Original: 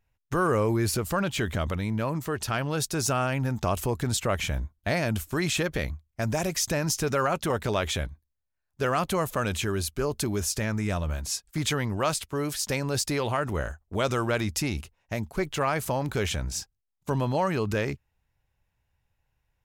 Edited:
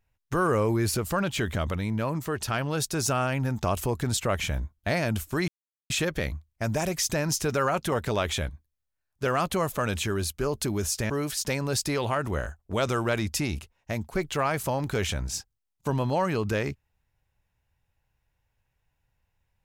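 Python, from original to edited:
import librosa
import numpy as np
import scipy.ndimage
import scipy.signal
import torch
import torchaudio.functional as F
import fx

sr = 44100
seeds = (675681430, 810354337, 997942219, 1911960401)

y = fx.edit(x, sr, fx.insert_silence(at_s=5.48, length_s=0.42),
    fx.cut(start_s=10.68, length_s=1.64), tone=tone)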